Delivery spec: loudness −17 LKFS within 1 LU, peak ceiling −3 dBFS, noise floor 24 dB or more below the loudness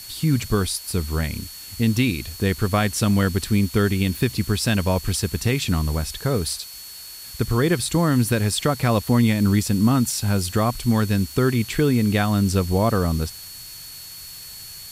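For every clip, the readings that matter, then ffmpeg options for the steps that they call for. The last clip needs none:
interfering tone 4,400 Hz; level of the tone −40 dBFS; background noise floor −39 dBFS; target noise floor −46 dBFS; integrated loudness −21.5 LKFS; sample peak −5.5 dBFS; target loudness −17.0 LKFS
→ -af "bandreject=frequency=4400:width=30"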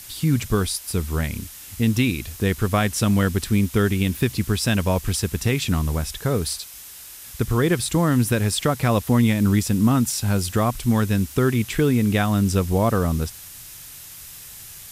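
interfering tone none found; background noise floor −41 dBFS; target noise floor −46 dBFS
→ -af "afftdn=noise_reduction=6:noise_floor=-41"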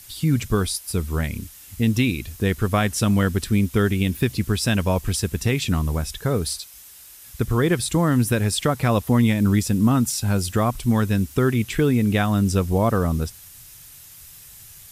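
background noise floor −45 dBFS; target noise floor −46 dBFS
→ -af "afftdn=noise_reduction=6:noise_floor=-45"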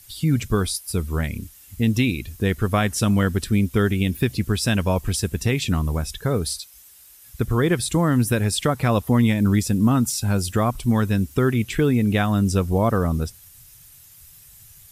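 background noise floor −48 dBFS; integrated loudness −21.5 LKFS; sample peak −5.5 dBFS; target loudness −17.0 LKFS
→ -af "volume=4.5dB,alimiter=limit=-3dB:level=0:latency=1"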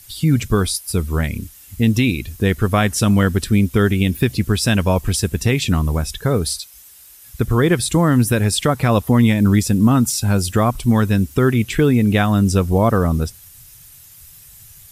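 integrated loudness −17.0 LKFS; sample peak −3.0 dBFS; background noise floor −44 dBFS

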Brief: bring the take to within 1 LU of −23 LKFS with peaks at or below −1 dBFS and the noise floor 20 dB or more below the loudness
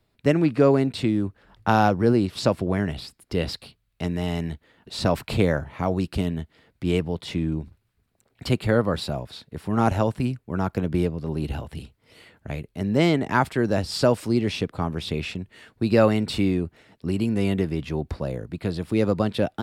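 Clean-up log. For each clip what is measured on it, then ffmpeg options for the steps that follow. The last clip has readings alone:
integrated loudness −24.5 LKFS; sample peak −4.5 dBFS; target loudness −23.0 LKFS
→ -af "volume=1.5dB"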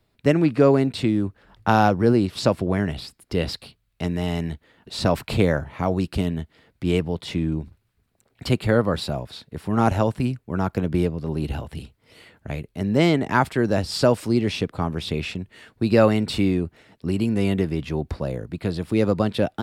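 integrated loudness −23.0 LKFS; sample peak −3.0 dBFS; background noise floor −69 dBFS

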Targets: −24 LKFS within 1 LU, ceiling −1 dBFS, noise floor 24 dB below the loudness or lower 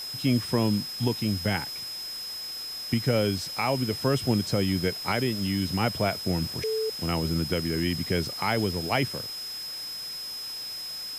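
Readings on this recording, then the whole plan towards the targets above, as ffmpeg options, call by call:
interfering tone 5,100 Hz; level of the tone −34 dBFS; background noise floor −36 dBFS; target noise floor −52 dBFS; integrated loudness −28.0 LKFS; sample peak −12.5 dBFS; target loudness −24.0 LKFS
→ -af "bandreject=frequency=5100:width=30"
-af "afftdn=noise_reduction=16:noise_floor=-36"
-af "volume=4dB"

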